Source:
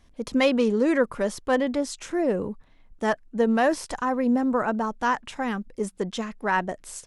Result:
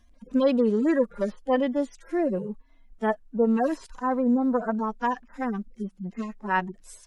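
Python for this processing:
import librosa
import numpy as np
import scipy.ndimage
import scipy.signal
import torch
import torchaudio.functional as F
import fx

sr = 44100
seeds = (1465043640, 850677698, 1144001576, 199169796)

y = fx.hpss_only(x, sr, part='harmonic')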